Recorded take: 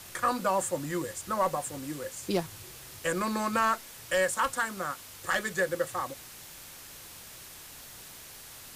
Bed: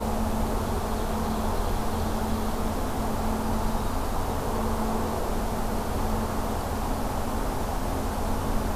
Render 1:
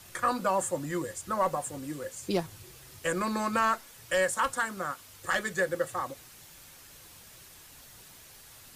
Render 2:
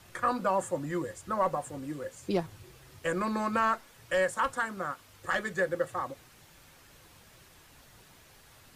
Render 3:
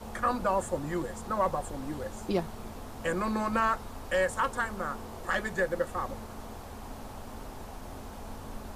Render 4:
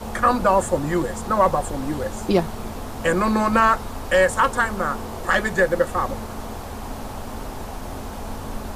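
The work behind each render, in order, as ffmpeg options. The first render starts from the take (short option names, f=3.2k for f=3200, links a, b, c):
-af "afftdn=nr=6:nf=-48"
-af "highshelf=f=4k:g=-10.5"
-filter_complex "[1:a]volume=-14.5dB[a];[0:a][a]amix=inputs=2:normalize=0"
-af "volume=10.5dB"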